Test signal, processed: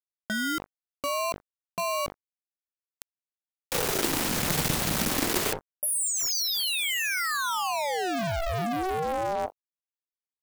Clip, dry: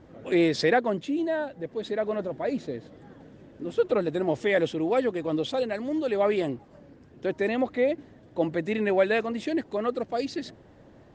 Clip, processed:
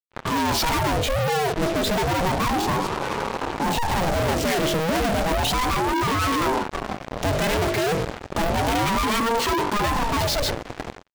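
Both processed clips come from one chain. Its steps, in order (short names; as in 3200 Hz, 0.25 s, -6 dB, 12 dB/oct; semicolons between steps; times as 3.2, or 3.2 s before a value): notches 50/100/150/200/250/300/350/400/450/500 Hz; AGC gain up to 12 dB; fuzz box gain 40 dB, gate -43 dBFS; power-law curve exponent 3; ring modulator with a swept carrier 420 Hz, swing 65%, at 0.32 Hz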